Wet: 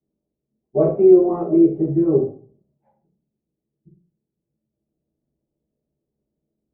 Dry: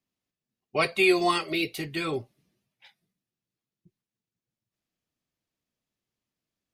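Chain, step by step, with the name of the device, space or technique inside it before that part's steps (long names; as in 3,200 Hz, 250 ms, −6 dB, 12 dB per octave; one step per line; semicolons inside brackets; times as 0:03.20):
next room (low-pass filter 640 Hz 24 dB per octave; convolution reverb RT60 0.40 s, pre-delay 3 ms, DRR −10 dB)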